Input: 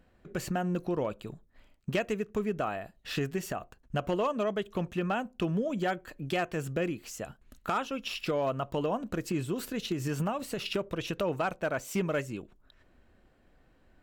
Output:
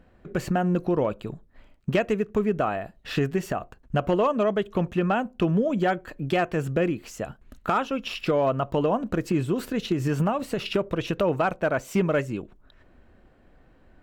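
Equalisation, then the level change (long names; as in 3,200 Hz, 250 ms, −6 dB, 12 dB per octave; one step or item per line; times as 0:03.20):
high-shelf EQ 3,300 Hz −9.5 dB
+7.5 dB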